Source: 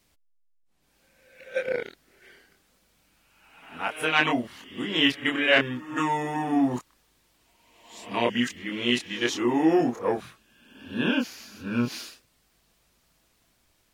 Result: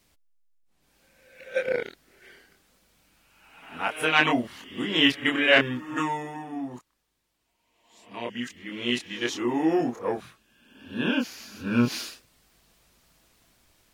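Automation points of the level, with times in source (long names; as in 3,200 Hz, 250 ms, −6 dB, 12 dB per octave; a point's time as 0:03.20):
0:05.89 +1.5 dB
0:06.50 −11 dB
0:08.10 −11 dB
0:08.89 −2.5 dB
0:10.86 −2.5 dB
0:11.84 +4 dB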